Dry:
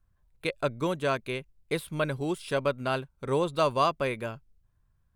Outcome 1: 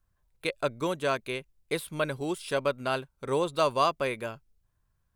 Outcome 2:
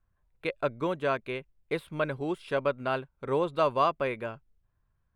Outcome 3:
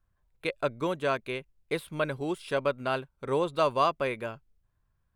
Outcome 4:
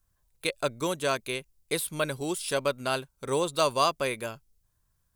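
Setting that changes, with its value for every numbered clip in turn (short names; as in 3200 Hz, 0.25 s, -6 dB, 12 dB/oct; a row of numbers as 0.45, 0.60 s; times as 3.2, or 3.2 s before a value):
tone controls, treble: +3, -14, -5, +13 dB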